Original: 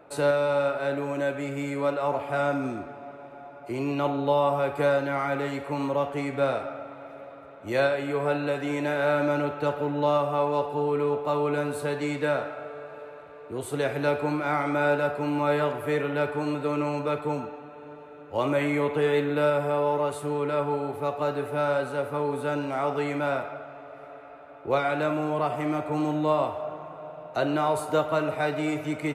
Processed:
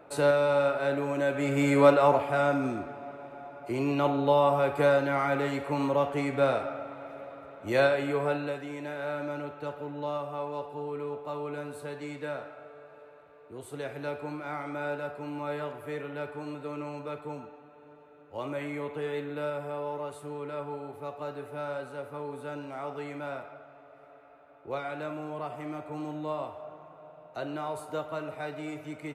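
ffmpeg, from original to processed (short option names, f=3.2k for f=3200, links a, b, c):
-af "volume=8dB,afade=t=in:st=1.28:d=0.54:silence=0.375837,afade=t=out:st=1.82:d=0.52:silence=0.398107,afade=t=out:st=8.02:d=0.66:silence=0.316228"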